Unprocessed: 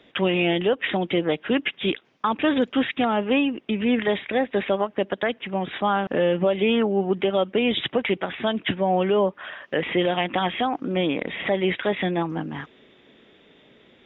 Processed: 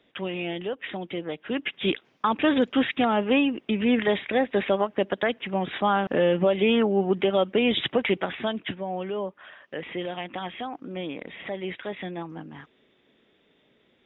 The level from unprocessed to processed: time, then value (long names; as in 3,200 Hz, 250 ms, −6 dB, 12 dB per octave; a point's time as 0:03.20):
0:01.36 −9.5 dB
0:01.90 −0.5 dB
0:08.27 −0.5 dB
0:08.86 −10 dB